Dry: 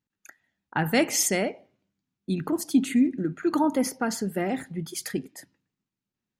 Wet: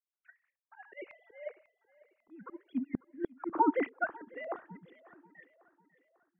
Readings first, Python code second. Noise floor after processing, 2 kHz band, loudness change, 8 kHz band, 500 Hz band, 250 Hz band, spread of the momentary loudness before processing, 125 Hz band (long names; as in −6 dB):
below −85 dBFS, −9.0 dB, −9.0 dB, below −40 dB, −10.0 dB, −13.0 dB, 11 LU, −22.0 dB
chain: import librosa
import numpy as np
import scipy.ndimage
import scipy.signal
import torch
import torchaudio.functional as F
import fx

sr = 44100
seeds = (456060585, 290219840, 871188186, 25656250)

p1 = fx.sine_speech(x, sr)
p2 = fx.auto_swell(p1, sr, attack_ms=285.0)
p3 = fx.level_steps(p2, sr, step_db=12)
p4 = p2 + (p3 * 10.0 ** (-2.5 / 20.0))
p5 = fx.gate_flip(p4, sr, shuts_db=-17.0, range_db=-40)
p6 = fx.filter_lfo_lowpass(p5, sr, shape='saw_up', hz=1.8, low_hz=970.0, high_hz=2400.0, q=2.8)
p7 = fx.echo_feedback(p6, sr, ms=546, feedback_pct=48, wet_db=-16)
y = fx.upward_expand(p7, sr, threshold_db=-44.0, expansion=1.5)